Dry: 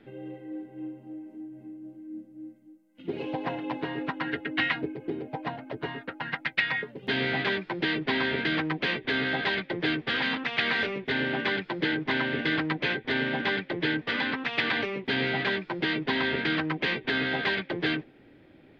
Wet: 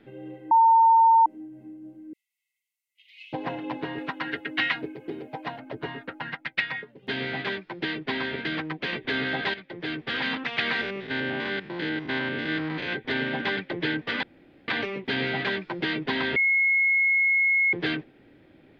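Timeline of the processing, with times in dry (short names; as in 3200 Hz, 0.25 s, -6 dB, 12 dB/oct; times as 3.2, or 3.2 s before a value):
0.51–1.26 bleep 907 Hz -13.5 dBFS
2.13–3.33 steep high-pass 2000 Hz 96 dB/oct
3.98–5.6 tilt +1.5 dB/oct
6.33–8.93 upward expander, over -38 dBFS
9.54–10.27 fade in, from -13.5 dB
10.81–12.93 stepped spectrum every 0.1 s
14.23–14.68 room tone
16.36–17.73 bleep 2170 Hz -18.5 dBFS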